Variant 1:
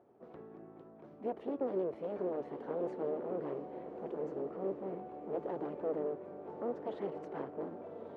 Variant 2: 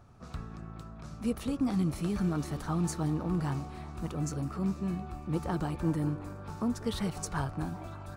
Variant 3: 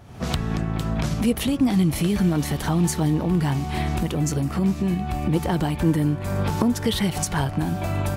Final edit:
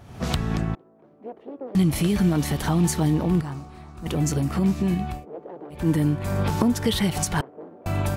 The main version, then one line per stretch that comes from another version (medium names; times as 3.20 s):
3
0.75–1.75 s: from 1
3.41–4.06 s: from 2
5.14–5.81 s: from 1, crossfade 0.24 s
7.41–7.86 s: from 1